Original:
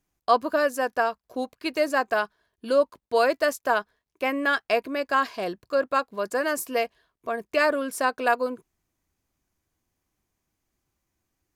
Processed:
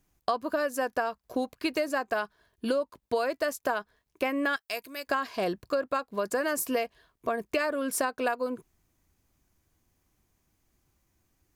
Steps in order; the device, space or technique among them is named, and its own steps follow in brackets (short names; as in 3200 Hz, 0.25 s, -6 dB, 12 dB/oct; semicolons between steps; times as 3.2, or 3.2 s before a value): 4.56–5.07 pre-emphasis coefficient 0.9; ASMR close-microphone chain (low shelf 190 Hz +5 dB; compressor 10:1, threshold -29 dBFS, peak gain reduction 15.5 dB; high shelf 11000 Hz +3.5 dB); gain +4 dB